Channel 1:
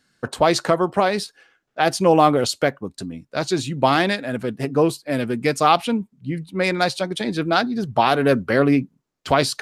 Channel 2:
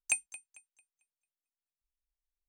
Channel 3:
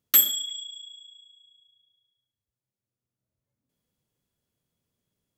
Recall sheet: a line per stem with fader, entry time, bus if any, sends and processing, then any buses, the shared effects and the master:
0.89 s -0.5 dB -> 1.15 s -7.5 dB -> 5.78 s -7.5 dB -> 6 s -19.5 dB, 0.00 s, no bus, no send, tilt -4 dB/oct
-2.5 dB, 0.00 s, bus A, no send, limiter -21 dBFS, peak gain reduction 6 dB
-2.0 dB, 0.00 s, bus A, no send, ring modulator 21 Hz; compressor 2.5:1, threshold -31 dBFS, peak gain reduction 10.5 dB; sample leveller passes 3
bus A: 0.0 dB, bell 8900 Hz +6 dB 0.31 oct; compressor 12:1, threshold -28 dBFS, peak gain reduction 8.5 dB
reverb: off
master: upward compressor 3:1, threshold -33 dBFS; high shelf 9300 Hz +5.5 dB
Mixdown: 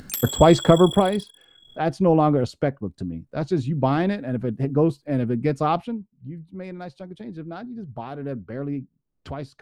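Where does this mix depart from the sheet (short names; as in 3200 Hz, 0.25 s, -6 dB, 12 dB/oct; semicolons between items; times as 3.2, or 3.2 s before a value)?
stem 2 -2.5 dB -> -10.5 dB; stem 3 -2.0 dB -> +7.0 dB; master: missing high shelf 9300 Hz +5.5 dB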